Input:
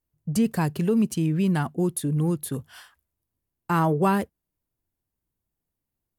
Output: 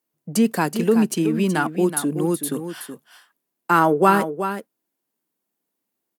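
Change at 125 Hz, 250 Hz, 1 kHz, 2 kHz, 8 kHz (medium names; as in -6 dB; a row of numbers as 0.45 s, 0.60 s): -3.0 dB, +3.5 dB, +8.0 dB, +9.0 dB, +7.0 dB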